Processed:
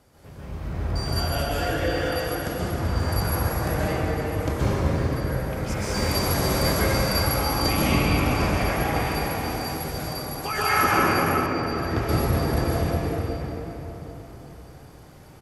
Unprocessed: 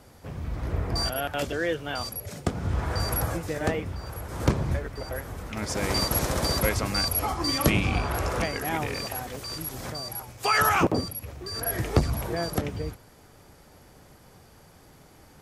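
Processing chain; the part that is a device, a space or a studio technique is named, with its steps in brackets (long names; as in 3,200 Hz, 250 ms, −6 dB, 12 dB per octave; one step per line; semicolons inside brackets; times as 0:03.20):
cave (single-tap delay 386 ms −10 dB; convolution reverb RT60 4.1 s, pre-delay 118 ms, DRR −10 dB)
0:11.46–0:12.09: high-frequency loss of the air 89 metres
level −7 dB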